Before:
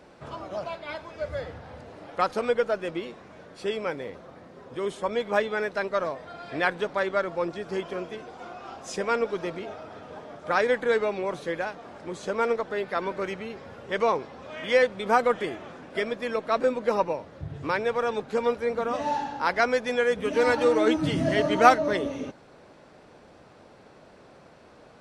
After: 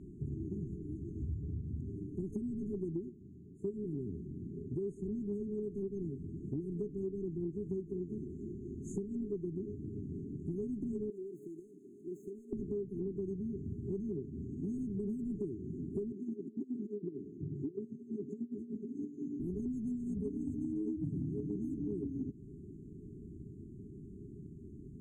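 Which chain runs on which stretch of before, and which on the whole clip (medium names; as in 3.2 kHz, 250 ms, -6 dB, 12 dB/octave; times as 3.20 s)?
3.09–3.74 s: high-pass 45 Hz + upward expansion, over -42 dBFS
11.10–12.53 s: median filter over 9 samples + high-pass 510 Hz + compression 2.5:1, threshold -37 dBFS
16.12–19.40 s: compressor with a negative ratio -32 dBFS + band-pass 290–3900 Hz + tilt EQ +1.5 dB/octave
whole clip: FFT band-reject 420–6300 Hz; tone controls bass +10 dB, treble -14 dB; compression 10:1, threshold -36 dBFS; trim +1.5 dB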